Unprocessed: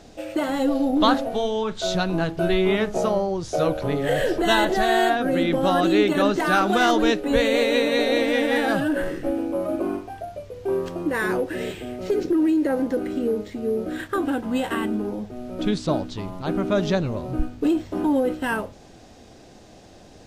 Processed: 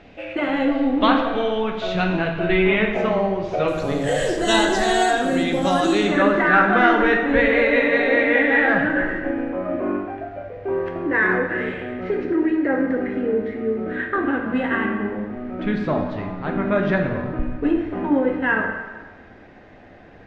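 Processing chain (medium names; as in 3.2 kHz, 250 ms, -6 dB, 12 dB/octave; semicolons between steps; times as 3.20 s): resonant low-pass 2.4 kHz, resonance Q 2.9, from 3.68 s 7.5 kHz, from 6.07 s 1.9 kHz; plate-style reverb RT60 1.4 s, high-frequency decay 0.8×, DRR 2 dB; trim -1 dB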